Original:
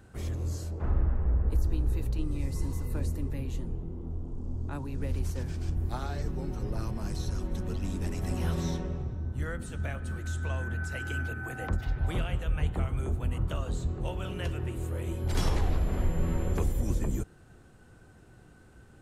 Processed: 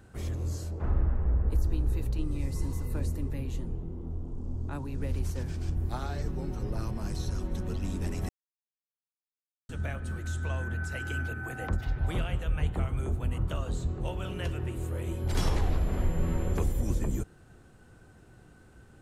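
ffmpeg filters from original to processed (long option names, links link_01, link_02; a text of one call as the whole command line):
ffmpeg -i in.wav -filter_complex "[0:a]asplit=3[link_01][link_02][link_03];[link_01]atrim=end=8.29,asetpts=PTS-STARTPTS,afade=type=out:start_time=8.286:duration=0.004:curve=hsin[link_04];[link_02]atrim=start=8.29:end=9.69,asetpts=PTS-STARTPTS,volume=0[link_05];[link_03]atrim=start=9.69,asetpts=PTS-STARTPTS,afade=type=in:duration=0.004:curve=hsin[link_06];[link_04][link_05][link_06]concat=n=3:v=0:a=1" out.wav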